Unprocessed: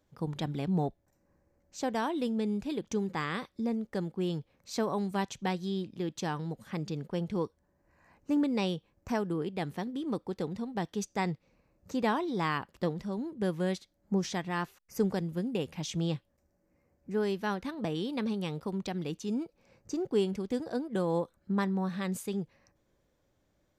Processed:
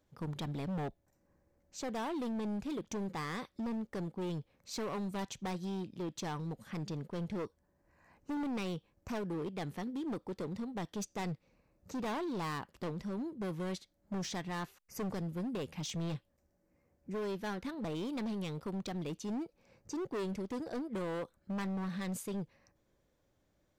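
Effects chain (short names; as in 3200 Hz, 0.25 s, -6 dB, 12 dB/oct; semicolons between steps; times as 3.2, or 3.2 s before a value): hard clip -32.5 dBFS, distortion -7 dB; gain -2 dB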